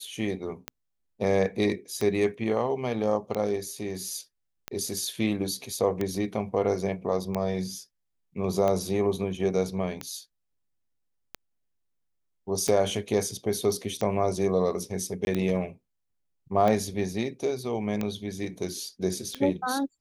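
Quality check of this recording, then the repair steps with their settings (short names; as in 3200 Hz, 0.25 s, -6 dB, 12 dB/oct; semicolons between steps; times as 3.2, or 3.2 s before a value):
tick 45 rpm -15 dBFS
15.25–15.27 gap 21 ms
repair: de-click; interpolate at 15.25, 21 ms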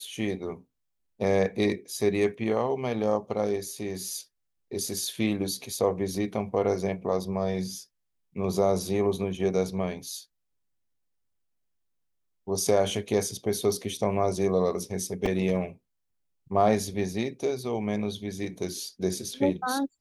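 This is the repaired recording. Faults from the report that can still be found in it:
none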